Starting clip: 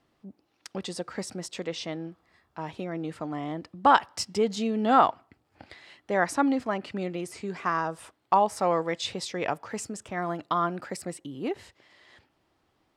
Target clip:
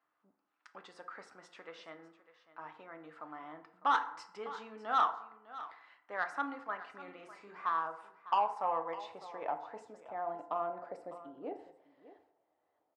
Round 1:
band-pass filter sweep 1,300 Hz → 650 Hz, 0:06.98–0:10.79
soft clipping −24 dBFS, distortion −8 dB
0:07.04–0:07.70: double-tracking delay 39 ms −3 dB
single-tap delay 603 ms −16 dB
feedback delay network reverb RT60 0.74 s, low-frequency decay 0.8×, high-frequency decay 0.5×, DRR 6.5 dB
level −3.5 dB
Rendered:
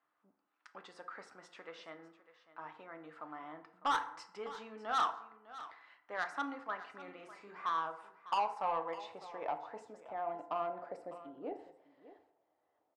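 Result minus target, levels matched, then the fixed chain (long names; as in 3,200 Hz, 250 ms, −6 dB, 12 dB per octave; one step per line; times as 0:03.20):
soft clipping: distortion +6 dB
band-pass filter sweep 1,300 Hz → 650 Hz, 0:06.98–0:10.79
soft clipping −17.5 dBFS, distortion −15 dB
0:07.04–0:07.70: double-tracking delay 39 ms −3 dB
single-tap delay 603 ms −16 dB
feedback delay network reverb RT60 0.74 s, low-frequency decay 0.8×, high-frequency decay 0.5×, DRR 6.5 dB
level −3.5 dB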